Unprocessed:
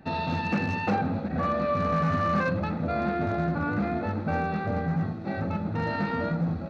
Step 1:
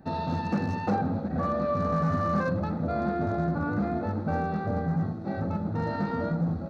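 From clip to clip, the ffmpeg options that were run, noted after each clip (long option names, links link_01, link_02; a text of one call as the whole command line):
ffmpeg -i in.wav -af "equalizer=frequency=2600:width_type=o:width=1.1:gain=-12.5" out.wav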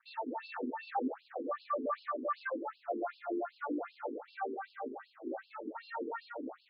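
ffmpeg -i in.wav -af "aeval=exprs='sgn(val(0))*max(abs(val(0))-0.00224,0)':channel_layout=same,afftfilt=real='re*between(b*sr/1024,310*pow(3800/310,0.5+0.5*sin(2*PI*2.6*pts/sr))/1.41,310*pow(3800/310,0.5+0.5*sin(2*PI*2.6*pts/sr))*1.41)':imag='im*between(b*sr/1024,310*pow(3800/310,0.5+0.5*sin(2*PI*2.6*pts/sr))/1.41,310*pow(3800/310,0.5+0.5*sin(2*PI*2.6*pts/sr))*1.41)':win_size=1024:overlap=0.75" out.wav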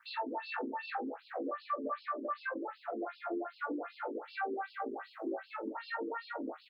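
ffmpeg -i in.wav -filter_complex "[0:a]acompressor=threshold=-48dB:ratio=3,asplit=2[link_01][link_02];[link_02]aecho=0:1:18|44:0.668|0.15[link_03];[link_01][link_03]amix=inputs=2:normalize=0,volume=8dB" out.wav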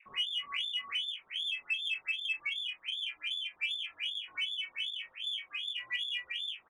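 ffmpeg -i in.wav -filter_complex "[0:a]lowpass=frequency=3200:width_type=q:width=0.5098,lowpass=frequency=3200:width_type=q:width=0.6013,lowpass=frequency=3200:width_type=q:width=0.9,lowpass=frequency=3200:width_type=q:width=2.563,afreqshift=-3800,asplit=2[link_01][link_02];[link_02]adelay=23,volume=-8dB[link_03];[link_01][link_03]amix=inputs=2:normalize=0,aexciter=amount=1.1:drive=8.9:freq=2000,volume=-2dB" out.wav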